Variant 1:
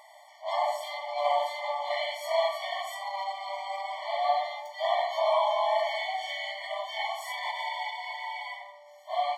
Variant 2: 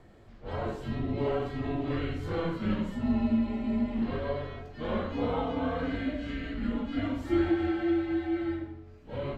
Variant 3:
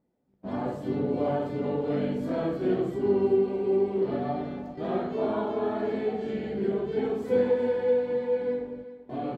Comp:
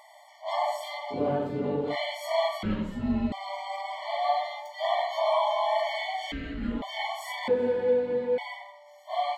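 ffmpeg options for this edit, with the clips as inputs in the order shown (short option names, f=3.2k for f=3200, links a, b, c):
-filter_complex "[2:a]asplit=2[a][b];[1:a]asplit=2[c][d];[0:a]asplit=5[e][f][g][h][i];[e]atrim=end=1.2[j];[a]atrim=start=1.1:end=1.96[k];[f]atrim=start=1.86:end=2.632[l];[c]atrim=start=2.628:end=3.322[m];[g]atrim=start=3.318:end=6.322[n];[d]atrim=start=6.318:end=6.822[o];[h]atrim=start=6.818:end=7.482[p];[b]atrim=start=7.478:end=8.382[q];[i]atrim=start=8.378[r];[j][k]acrossfade=d=0.1:c1=tri:c2=tri[s];[s][l]acrossfade=d=0.1:c1=tri:c2=tri[t];[t][m]acrossfade=d=0.004:c1=hsin:c2=hsin[u];[u][n]acrossfade=d=0.004:c1=hsin:c2=hsin[v];[v][o]acrossfade=d=0.004:c1=hsin:c2=hsin[w];[w][p]acrossfade=d=0.004:c1=hsin:c2=hsin[x];[x][q]acrossfade=d=0.004:c1=hsin:c2=hsin[y];[y][r]acrossfade=d=0.004:c1=hsin:c2=hsin"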